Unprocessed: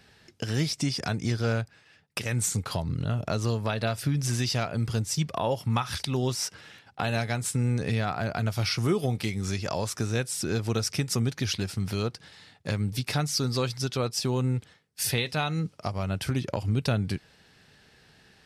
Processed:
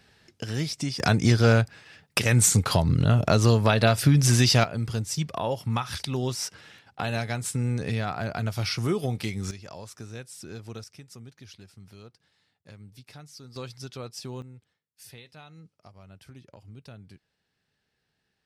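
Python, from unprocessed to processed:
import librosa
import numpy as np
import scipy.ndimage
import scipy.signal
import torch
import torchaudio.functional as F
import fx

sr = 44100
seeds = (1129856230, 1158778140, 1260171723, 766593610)

y = fx.gain(x, sr, db=fx.steps((0.0, -2.0), (1.0, 8.0), (4.64, -1.0), (9.51, -12.0), (10.84, -19.0), (13.56, -10.0), (14.42, -20.0)))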